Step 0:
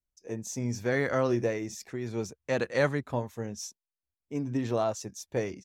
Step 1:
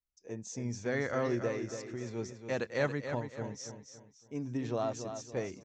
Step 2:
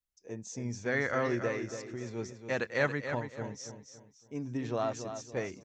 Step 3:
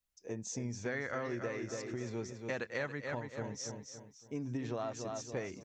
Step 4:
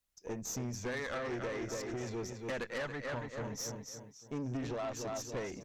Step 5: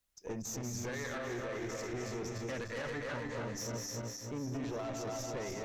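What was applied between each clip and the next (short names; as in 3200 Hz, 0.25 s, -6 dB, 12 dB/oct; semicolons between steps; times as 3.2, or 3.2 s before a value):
steep low-pass 7600 Hz 48 dB/oct; on a send: feedback echo 0.281 s, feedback 36%, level -8.5 dB; on the sum: gain -5.5 dB
dynamic EQ 1800 Hz, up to +6 dB, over -48 dBFS, Q 0.85
compressor 4:1, threshold -39 dBFS, peak gain reduction 14 dB; gain +3 dB
tube stage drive 39 dB, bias 0.6; gain +6 dB
regenerating reverse delay 0.149 s, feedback 71%, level -5 dB; limiter -33.5 dBFS, peak gain reduction 8.5 dB; gain +2 dB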